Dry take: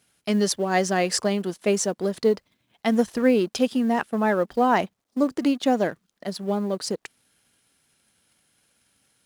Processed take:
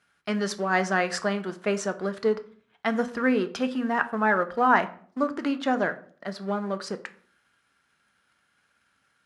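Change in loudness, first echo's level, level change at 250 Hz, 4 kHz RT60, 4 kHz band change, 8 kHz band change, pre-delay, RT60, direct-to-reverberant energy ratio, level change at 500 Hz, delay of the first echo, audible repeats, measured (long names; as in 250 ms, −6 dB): −3.0 dB, no echo audible, −4.5 dB, 0.35 s, −6.0 dB, −9.5 dB, 3 ms, 0.50 s, 9.0 dB, −4.0 dB, no echo audible, no echo audible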